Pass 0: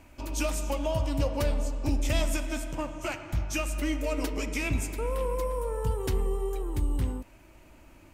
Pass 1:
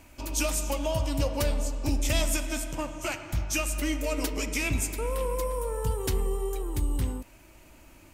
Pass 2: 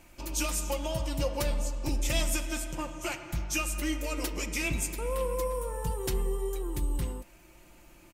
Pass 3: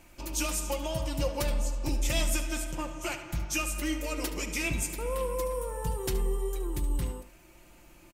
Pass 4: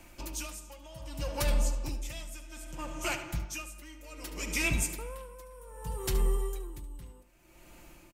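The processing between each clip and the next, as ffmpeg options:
ffmpeg -i in.wav -af "highshelf=frequency=3600:gain=8" out.wav
ffmpeg -i in.wav -af "aecho=1:1:5.7:0.5,volume=-3dB" out.wav
ffmpeg -i in.wav -af "aecho=1:1:73:0.211" out.wav
ffmpeg -i in.wav -filter_complex "[0:a]acrossover=split=190|720|1900[link_01][link_02][link_03][link_04];[link_02]asoftclip=type=tanh:threshold=-38dB[link_05];[link_01][link_05][link_03][link_04]amix=inputs=4:normalize=0,aeval=exprs='val(0)*pow(10,-18*(0.5-0.5*cos(2*PI*0.64*n/s))/20)':channel_layout=same,volume=2.5dB" out.wav

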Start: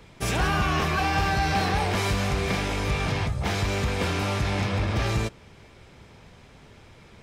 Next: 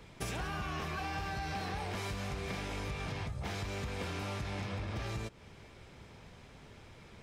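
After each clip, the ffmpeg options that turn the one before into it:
ffmpeg -i in.wav -af "acompressor=threshold=-32dB:ratio=6,volume=-4dB" out.wav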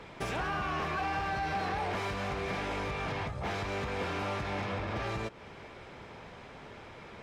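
ffmpeg -i in.wav -filter_complex "[0:a]asplit=2[link_01][link_02];[link_02]highpass=frequency=720:poles=1,volume=15dB,asoftclip=type=tanh:threshold=-26.5dB[link_03];[link_01][link_03]amix=inputs=2:normalize=0,lowpass=frequency=1200:poles=1,volume=-6dB,volume=4dB" out.wav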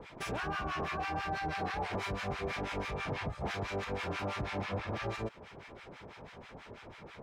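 ffmpeg -i in.wav -filter_complex "[0:a]acrossover=split=990[link_01][link_02];[link_01]aeval=exprs='val(0)*(1-1/2+1/2*cos(2*PI*6.1*n/s))':channel_layout=same[link_03];[link_02]aeval=exprs='val(0)*(1-1/2-1/2*cos(2*PI*6.1*n/s))':channel_layout=same[link_04];[link_03][link_04]amix=inputs=2:normalize=0,volume=2.5dB" out.wav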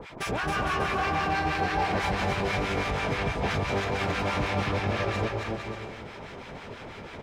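ffmpeg -i in.wav -af "aecho=1:1:270|459|591.3|683.9|748.7:0.631|0.398|0.251|0.158|0.1,volume=7dB" out.wav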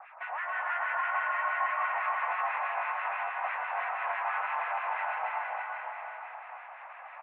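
ffmpeg -i in.wav -af "highpass=frequency=390:width_type=q:width=0.5412,highpass=frequency=390:width_type=q:width=1.307,lowpass=frequency=2000:width_type=q:width=0.5176,lowpass=frequency=2000:width_type=q:width=0.7071,lowpass=frequency=2000:width_type=q:width=1.932,afreqshift=300,aecho=1:1:340|612|829.6|1004|1143:0.631|0.398|0.251|0.158|0.1,volume=-4dB" out.wav

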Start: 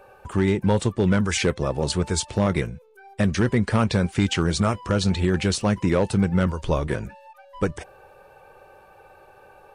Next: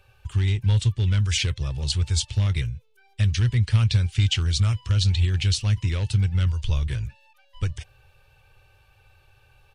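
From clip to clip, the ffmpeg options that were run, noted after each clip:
ffmpeg -i in.wav -af "firequalizer=gain_entry='entry(120,0);entry(170,-20);entry(550,-25);entry(3000,-2);entry(8800,-10)':delay=0.05:min_phase=1,volume=6dB" out.wav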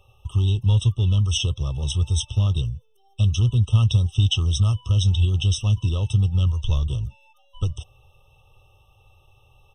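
ffmpeg -i in.wav -af "afftfilt=real='re*eq(mod(floor(b*sr/1024/1300),2),0)':imag='im*eq(mod(floor(b*sr/1024/1300),2),0)':win_size=1024:overlap=0.75,volume=2dB" out.wav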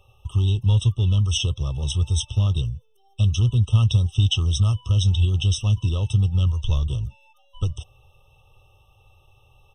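ffmpeg -i in.wav -af anull out.wav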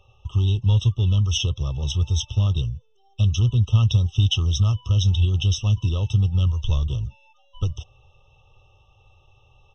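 ffmpeg -i in.wav -af "aresample=16000,aresample=44100" out.wav

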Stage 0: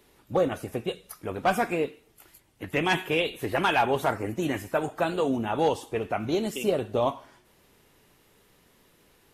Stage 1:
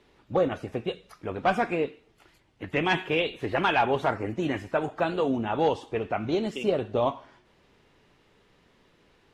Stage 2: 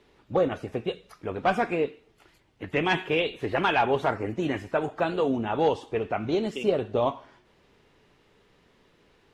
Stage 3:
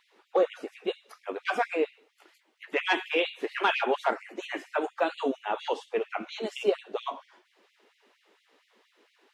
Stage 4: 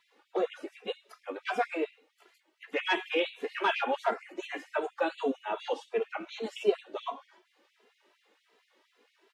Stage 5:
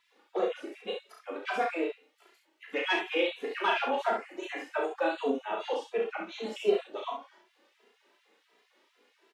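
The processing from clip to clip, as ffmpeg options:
ffmpeg -i in.wav -af "lowpass=4400" out.wav
ffmpeg -i in.wav -af "equalizer=frequency=430:width=5.2:gain=2.5" out.wav
ffmpeg -i in.wav -af "afftfilt=real='re*gte(b*sr/1024,210*pow(2000/210,0.5+0.5*sin(2*PI*4.3*pts/sr)))':imag='im*gte(b*sr/1024,210*pow(2000/210,0.5+0.5*sin(2*PI*4.3*pts/sr)))':win_size=1024:overlap=0.75" out.wav
ffmpeg -i in.wav -filter_complex "[0:a]asplit=2[link_01][link_02];[link_02]adelay=2.6,afreqshift=2.7[link_03];[link_01][link_03]amix=inputs=2:normalize=1" out.wav
ffmpeg -i in.wav -af "aecho=1:1:34|66:0.668|0.562,volume=-1.5dB" out.wav

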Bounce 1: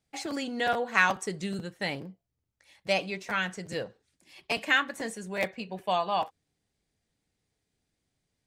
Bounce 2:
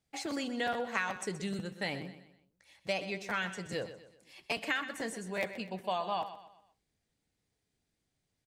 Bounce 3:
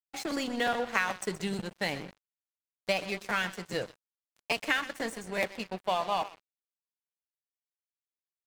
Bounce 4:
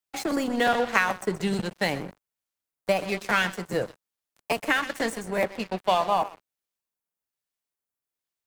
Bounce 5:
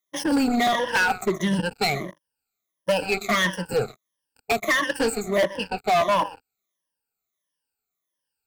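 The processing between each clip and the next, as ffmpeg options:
ffmpeg -i in.wav -filter_complex "[0:a]acompressor=threshold=-27dB:ratio=5,asplit=2[link_01][link_02];[link_02]aecho=0:1:125|250|375|500:0.237|0.0925|0.0361|0.0141[link_03];[link_01][link_03]amix=inputs=2:normalize=0,volume=-2.5dB" out.wav
ffmpeg -i in.wav -af "aeval=exprs='sgn(val(0))*max(abs(val(0))-0.00596,0)':channel_layout=same,volume=6dB" out.wav
ffmpeg -i in.wav -filter_complex "[0:a]acrossover=split=310|1700|7900[link_01][link_02][link_03][link_04];[link_03]tremolo=f=1.2:d=0.73[link_05];[link_04]alimiter=level_in=11dB:limit=-24dB:level=0:latency=1:release=451,volume=-11dB[link_06];[link_01][link_02][link_05][link_06]amix=inputs=4:normalize=0,volume=7dB" out.wav
ffmpeg -i in.wav -af "afftfilt=real='re*pow(10,22/40*sin(2*PI*(1.2*log(max(b,1)*sr/1024/100)/log(2)-(-1.5)*(pts-256)/sr)))':imag='im*pow(10,22/40*sin(2*PI*(1.2*log(max(b,1)*sr/1024/100)/log(2)-(-1.5)*(pts-256)/sr)))':win_size=1024:overlap=0.75,volume=16.5dB,asoftclip=hard,volume=-16.5dB" out.wav

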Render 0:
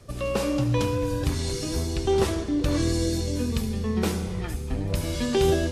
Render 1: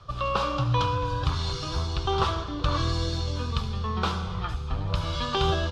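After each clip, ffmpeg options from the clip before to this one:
ffmpeg -i in.wav -af "firequalizer=gain_entry='entry(150,0);entry(230,-12);entry(1200,13);entry(1900,-6);entry(3300,6);entry(8500,-18);entry(13000,-25)':delay=0.05:min_phase=1" out.wav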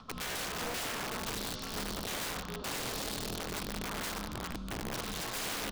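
ffmpeg -i in.wav -af "acompressor=mode=upward:threshold=-41dB:ratio=2.5,aeval=exprs='val(0)*sin(2*PI*120*n/s)':channel_layout=same,aeval=exprs='(mod(20*val(0)+1,2)-1)/20':channel_layout=same,volume=-5dB" out.wav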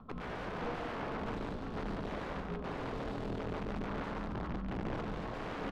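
ffmpeg -i in.wav -filter_complex "[0:a]adynamicsmooth=sensitivity=2:basefreq=900,flanger=delay=5.1:depth=5.9:regen=-85:speed=0.43:shape=sinusoidal,asplit=2[link_01][link_02];[link_02]aecho=0:1:140:0.531[link_03];[link_01][link_03]amix=inputs=2:normalize=0,volume=6dB" out.wav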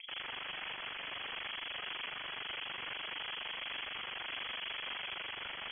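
ffmpeg -i in.wav -af "tremolo=f=24:d=0.919,aeval=exprs='(mod(150*val(0)+1,2)-1)/150':channel_layout=same,lowpass=frequency=2900:width_type=q:width=0.5098,lowpass=frequency=2900:width_type=q:width=0.6013,lowpass=frequency=2900:width_type=q:width=0.9,lowpass=frequency=2900:width_type=q:width=2.563,afreqshift=-3400,volume=9dB" out.wav

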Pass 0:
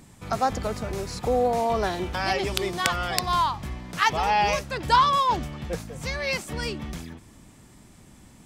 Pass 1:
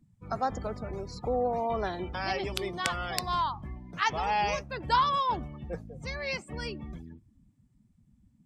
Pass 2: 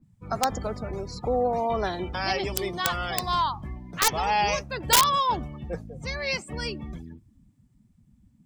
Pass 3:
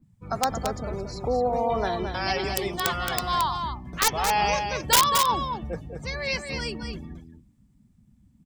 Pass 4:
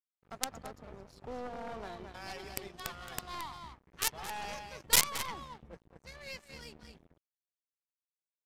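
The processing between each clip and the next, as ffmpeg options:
ffmpeg -i in.wav -af "afftdn=noise_reduction=25:noise_floor=-38,volume=-6dB" out.wav
ffmpeg -i in.wav -af "aeval=exprs='(mod(7.5*val(0)+1,2)-1)/7.5':channel_layout=same,adynamicequalizer=threshold=0.00631:dfrequency=3400:dqfactor=0.7:tfrequency=3400:tqfactor=0.7:attack=5:release=100:ratio=0.375:range=2.5:mode=boostabove:tftype=highshelf,volume=4dB" out.wav
ffmpeg -i in.wav -af "aecho=1:1:222:0.473" out.wav
ffmpeg -i in.wav -af "aeval=exprs='sgn(val(0))*max(abs(val(0))-0.0158,0)':channel_layout=same,aeval=exprs='0.501*(cos(1*acos(clip(val(0)/0.501,-1,1)))-cos(1*PI/2))+0.1*(cos(2*acos(clip(val(0)/0.501,-1,1)))-cos(2*PI/2))+0.2*(cos(3*acos(clip(val(0)/0.501,-1,1)))-cos(3*PI/2))':channel_layout=same,aresample=32000,aresample=44100" out.wav

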